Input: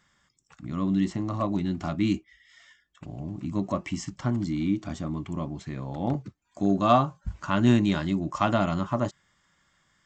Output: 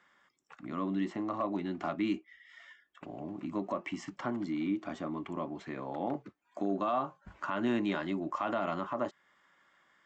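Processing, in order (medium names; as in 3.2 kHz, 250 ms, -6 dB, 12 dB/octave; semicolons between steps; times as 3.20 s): three-band isolator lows -23 dB, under 260 Hz, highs -15 dB, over 3 kHz; in parallel at +0.5 dB: compression, threshold -39 dBFS, peak gain reduction 21.5 dB; on the sum: peak limiter -18.5 dBFS, peak gain reduction 11 dB; trim -3.5 dB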